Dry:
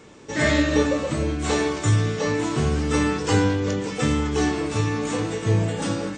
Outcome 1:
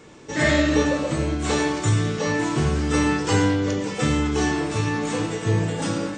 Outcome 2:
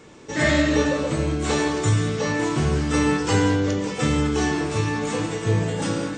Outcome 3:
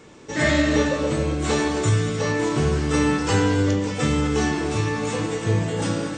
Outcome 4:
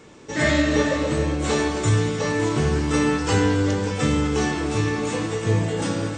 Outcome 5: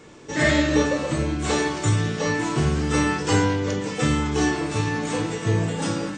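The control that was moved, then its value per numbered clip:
gated-style reverb, gate: 140 ms, 220 ms, 340 ms, 540 ms, 80 ms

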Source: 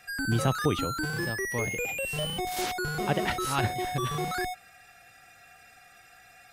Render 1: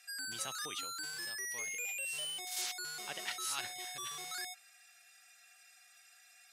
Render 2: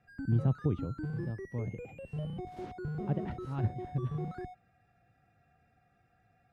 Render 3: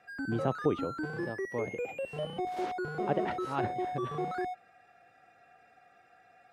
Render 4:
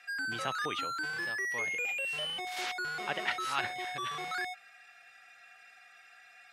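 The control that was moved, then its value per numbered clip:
band-pass filter, frequency: 7.2 kHz, 120 Hz, 460 Hz, 2.2 kHz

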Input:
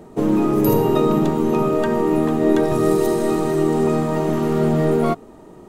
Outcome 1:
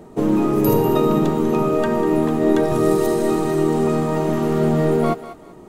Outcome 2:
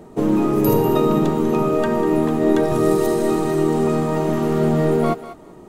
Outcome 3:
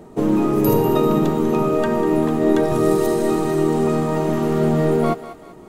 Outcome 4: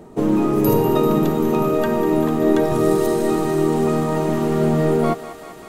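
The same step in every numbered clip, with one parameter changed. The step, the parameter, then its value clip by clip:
thinning echo, feedback: 30%, 17%, 47%, 88%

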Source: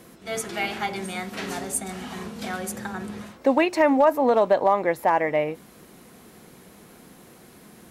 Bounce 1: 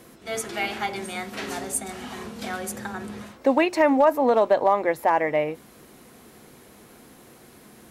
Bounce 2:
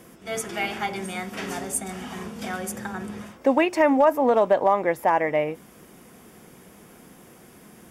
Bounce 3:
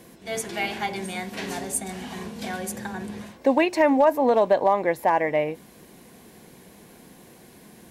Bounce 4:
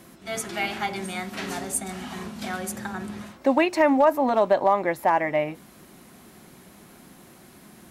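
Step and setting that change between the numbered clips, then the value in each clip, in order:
band-stop, frequency: 180 Hz, 4.1 kHz, 1.3 kHz, 470 Hz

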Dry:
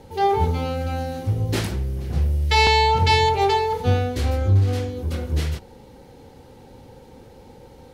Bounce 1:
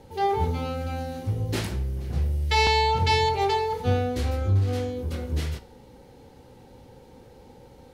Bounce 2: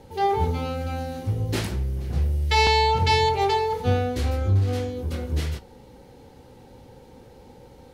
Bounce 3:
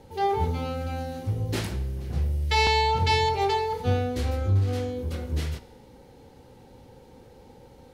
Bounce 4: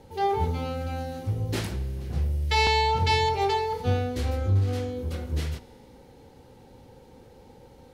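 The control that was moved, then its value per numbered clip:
feedback comb, decay: 0.45 s, 0.17 s, 1 s, 2.2 s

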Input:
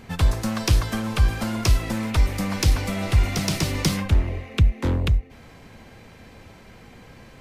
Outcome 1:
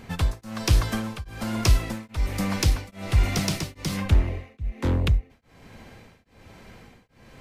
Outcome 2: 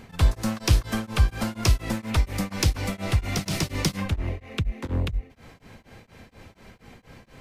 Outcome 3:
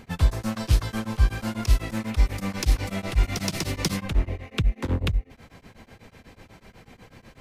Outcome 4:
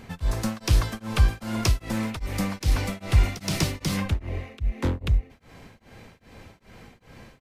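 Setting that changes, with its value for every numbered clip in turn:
tremolo of two beating tones, nulls at: 1.2 Hz, 4.2 Hz, 8.1 Hz, 2.5 Hz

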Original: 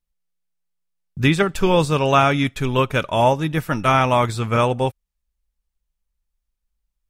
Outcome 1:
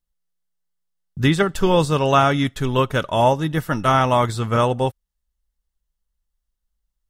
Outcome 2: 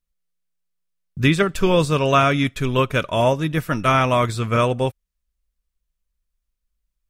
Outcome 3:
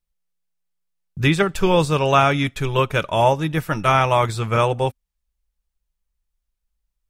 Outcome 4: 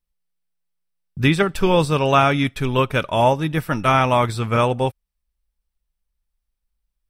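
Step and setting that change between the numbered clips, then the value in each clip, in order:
band-stop, frequency: 2.4 kHz, 840 Hz, 250 Hz, 6.8 kHz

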